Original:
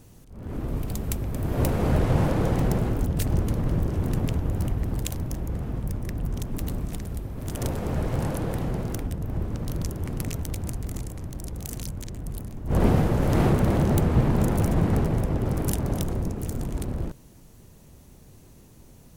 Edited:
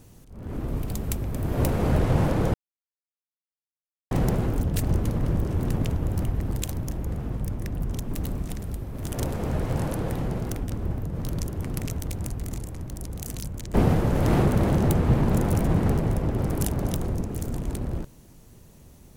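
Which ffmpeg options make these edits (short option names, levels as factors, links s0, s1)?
-filter_complex "[0:a]asplit=5[s0][s1][s2][s3][s4];[s0]atrim=end=2.54,asetpts=PTS-STARTPTS,afade=t=out:st=2.536:d=0.004:c=hsin,apad=pad_dur=1.57[s5];[s1]atrim=start=2.54:end=9.132,asetpts=PTS-STARTPTS,afade=t=in:d=0.004:c=hsin[s6];[s2]atrim=start=9.128:end=9.582,asetpts=PTS-STARTPTS,areverse[s7];[s3]atrim=start=9.578:end=12.172[s8];[s4]atrim=start=12.808[s9];[s5][s6]concat=n=2:v=0:a=1[s10];[s10][s7]acrossfade=d=0.004:c1=hsin:c2=hsin[s11];[s11][s8]acrossfade=d=0.004:c1=hsin:c2=hsin[s12];[s12][s9]acrossfade=d=0.004:c1=hsin:c2=hsin"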